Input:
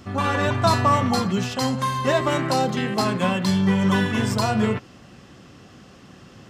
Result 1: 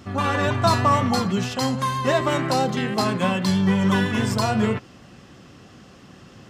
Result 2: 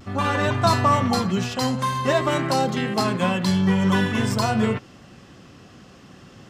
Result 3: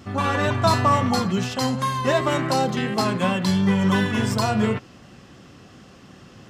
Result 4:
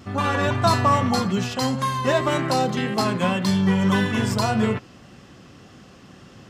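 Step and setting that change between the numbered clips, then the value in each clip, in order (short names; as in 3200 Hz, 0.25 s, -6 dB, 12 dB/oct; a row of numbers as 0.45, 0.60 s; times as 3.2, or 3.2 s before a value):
vibrato, rate: 6.2, 0.49, 2.8, 1.8 Hz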